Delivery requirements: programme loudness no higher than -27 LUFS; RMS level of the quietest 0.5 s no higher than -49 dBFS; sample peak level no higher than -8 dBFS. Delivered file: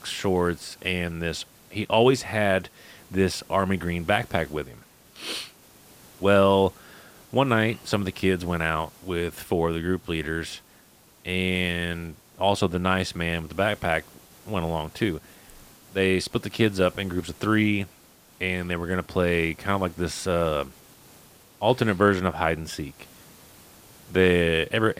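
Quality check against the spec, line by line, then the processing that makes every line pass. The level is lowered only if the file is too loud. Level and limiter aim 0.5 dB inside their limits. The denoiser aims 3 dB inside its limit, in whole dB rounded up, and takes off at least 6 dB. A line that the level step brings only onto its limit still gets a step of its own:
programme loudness -25.0 LUFS: fail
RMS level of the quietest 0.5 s -55 dBFS: pass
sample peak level -5.0 dBFS: fail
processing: trim -2.5 dB; peak limiter -8.5 dBFS

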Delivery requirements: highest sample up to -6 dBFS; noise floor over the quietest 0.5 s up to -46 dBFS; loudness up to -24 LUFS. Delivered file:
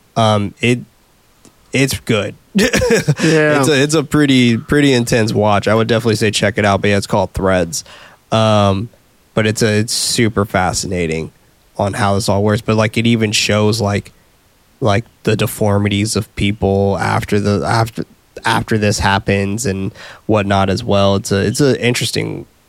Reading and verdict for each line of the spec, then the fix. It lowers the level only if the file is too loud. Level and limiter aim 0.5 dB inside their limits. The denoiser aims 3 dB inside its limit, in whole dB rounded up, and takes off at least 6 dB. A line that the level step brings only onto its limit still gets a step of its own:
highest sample -2.0 dBFS: fail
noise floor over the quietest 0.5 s -52 dBFS: pass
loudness -14.5 LUFS: fail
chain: trim -10 dB

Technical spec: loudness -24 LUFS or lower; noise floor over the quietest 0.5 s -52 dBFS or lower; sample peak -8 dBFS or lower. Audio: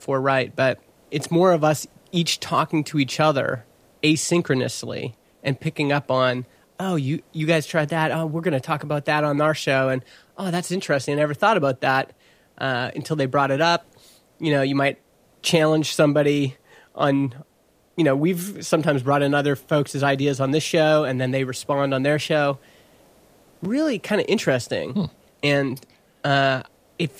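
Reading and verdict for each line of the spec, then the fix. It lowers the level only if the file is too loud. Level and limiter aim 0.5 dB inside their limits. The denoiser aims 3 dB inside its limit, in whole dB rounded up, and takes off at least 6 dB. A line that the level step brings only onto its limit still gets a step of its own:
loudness -22.0 LUFS: fail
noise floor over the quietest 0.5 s -60 dBFS: pass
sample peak -5.5 dBFS: fail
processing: trim -2.5 dB; peak limiter -8.5 dBFS

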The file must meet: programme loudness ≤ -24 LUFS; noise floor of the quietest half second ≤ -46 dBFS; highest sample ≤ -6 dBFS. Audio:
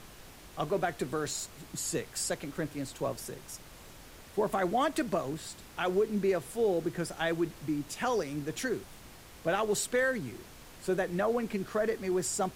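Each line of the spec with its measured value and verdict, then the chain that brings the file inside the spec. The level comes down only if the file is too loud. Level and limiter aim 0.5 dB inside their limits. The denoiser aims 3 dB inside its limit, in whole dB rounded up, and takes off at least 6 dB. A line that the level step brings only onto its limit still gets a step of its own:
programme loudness -32.5 LUFS: pass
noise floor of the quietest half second -51 dBFS: pass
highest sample -18.0 dBFS: pass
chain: none needed

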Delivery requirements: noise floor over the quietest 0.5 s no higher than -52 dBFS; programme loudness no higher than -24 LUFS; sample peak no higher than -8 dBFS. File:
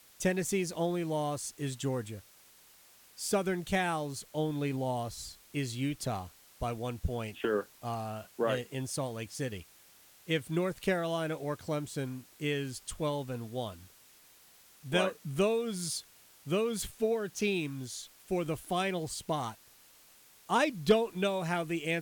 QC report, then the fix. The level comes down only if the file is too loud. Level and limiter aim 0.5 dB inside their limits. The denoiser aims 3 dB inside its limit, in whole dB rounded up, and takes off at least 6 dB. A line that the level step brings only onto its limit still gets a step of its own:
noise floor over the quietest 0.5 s -60 dBFS: pass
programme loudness -33.5 LUFS: pass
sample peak -14.0 dBFS: pass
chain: none needed

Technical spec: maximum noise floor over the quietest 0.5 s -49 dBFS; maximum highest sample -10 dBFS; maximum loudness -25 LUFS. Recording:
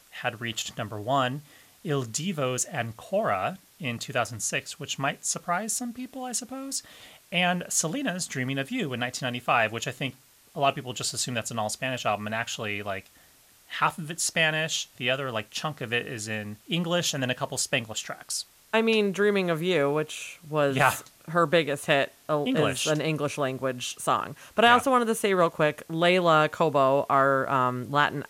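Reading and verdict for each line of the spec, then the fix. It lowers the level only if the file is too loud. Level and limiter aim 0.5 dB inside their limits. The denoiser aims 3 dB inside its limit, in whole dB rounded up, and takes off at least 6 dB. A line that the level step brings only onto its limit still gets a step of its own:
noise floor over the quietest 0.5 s -57 dBFS: pass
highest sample -6.0 dBFS: fail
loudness -26.5 LUFS: pass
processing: peak limiter -10.5 dBFS

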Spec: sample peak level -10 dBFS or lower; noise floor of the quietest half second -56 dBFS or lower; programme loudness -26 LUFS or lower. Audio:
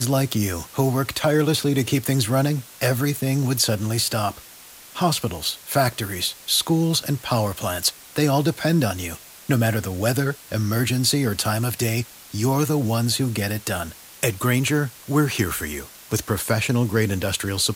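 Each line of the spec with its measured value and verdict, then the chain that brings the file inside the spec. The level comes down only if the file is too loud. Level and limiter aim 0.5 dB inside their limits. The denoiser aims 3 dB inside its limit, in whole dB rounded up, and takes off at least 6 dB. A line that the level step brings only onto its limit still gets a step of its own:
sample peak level -6.0 dBFS: fail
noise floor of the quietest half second -44 dBFS: fail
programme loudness -22.5 LUFS: fail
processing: noise reduction 11 dB, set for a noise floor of -44 dBFS; trim -4 dB; peak limiter -10.5 dBFS

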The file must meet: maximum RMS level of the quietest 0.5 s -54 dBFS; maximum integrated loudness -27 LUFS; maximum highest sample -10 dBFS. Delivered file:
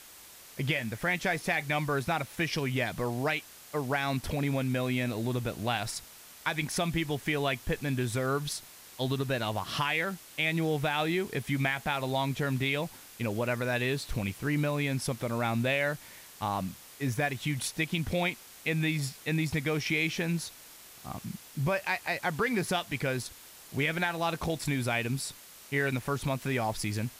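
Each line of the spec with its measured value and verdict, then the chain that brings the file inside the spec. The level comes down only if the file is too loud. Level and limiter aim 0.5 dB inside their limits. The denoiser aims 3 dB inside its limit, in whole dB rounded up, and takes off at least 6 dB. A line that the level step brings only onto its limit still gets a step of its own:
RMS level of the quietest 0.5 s -51 dBFS: fail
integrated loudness -31.0 LUFS: pass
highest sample -13.5 dBFS: pass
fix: noise reduction 6 dB, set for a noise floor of -51 dBFS

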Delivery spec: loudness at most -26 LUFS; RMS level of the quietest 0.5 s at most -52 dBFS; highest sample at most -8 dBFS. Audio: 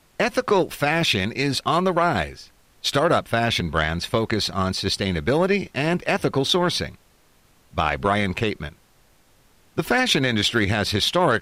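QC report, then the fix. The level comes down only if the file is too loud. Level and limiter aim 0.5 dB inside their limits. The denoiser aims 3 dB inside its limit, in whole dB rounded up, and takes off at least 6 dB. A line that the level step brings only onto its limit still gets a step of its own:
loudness -21.5 LUFS: fail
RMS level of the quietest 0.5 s -57 dBFS: pass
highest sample -6.0 dBFS: fail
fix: trim -5 dB

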